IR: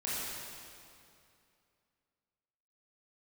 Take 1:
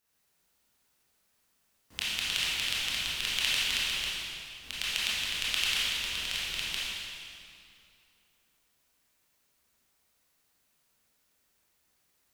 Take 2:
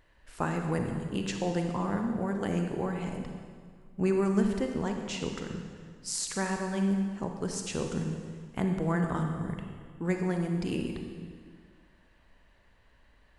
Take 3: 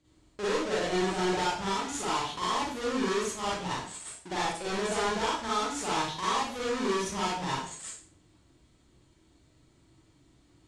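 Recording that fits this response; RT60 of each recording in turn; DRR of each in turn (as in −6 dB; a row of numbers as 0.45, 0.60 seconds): 1; 2.5, 1.8, 0.45 seconds; −9.0, 3.5, −8.0 decibels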